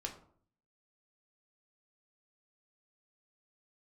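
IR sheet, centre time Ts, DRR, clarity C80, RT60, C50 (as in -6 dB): 16 ms, 1.0 dB, 13.5 dB, 0.55 s, 10.0 dB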